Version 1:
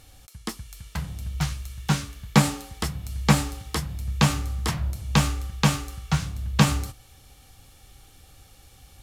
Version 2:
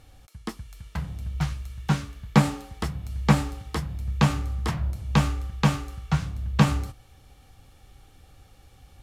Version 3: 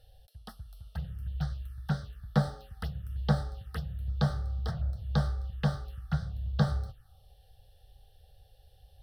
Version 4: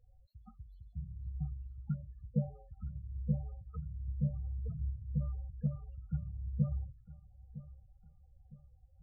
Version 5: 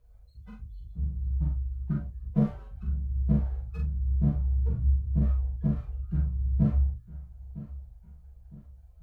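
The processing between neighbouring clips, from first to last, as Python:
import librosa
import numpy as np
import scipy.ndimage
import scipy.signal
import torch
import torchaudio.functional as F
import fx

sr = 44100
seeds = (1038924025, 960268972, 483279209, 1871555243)

y1 = fx.high_shelf(x, sr, hz=3300.0, db=-10.5)
y2 = fx.fixed_phaser(y1, sr, hz=1500.0, stages=8)
y2 = fx.env_phaser(y2, sr, low_hz=180.0, high_hz=2700.0, full_db=-25.0)
y2 = F.gain(torch.from_numpy(y2), -3.5).numpy()
y3 = fx.spec_topn(y2, sr, count=8)
y3 = fx.echo_feedback(y3, sr, ms=959, feedback_pct=40, wet_db=-17)
y3 = F.gain(torch.from_numpy(y3), -5.5).numpy()
y4 = fx.lower_of_two(y3, sr, delay_ms=0.45)
y4 = fx.doubler(y4, sr, ms=42.0, db=-3)
y4 = fx.rev_gated(y4, sr, seeds[0], gate_ms=80, shape='falling', drr_db=-4.5)
y4 = F.gain(torch.from_numpy(y4), 2.0).numpy()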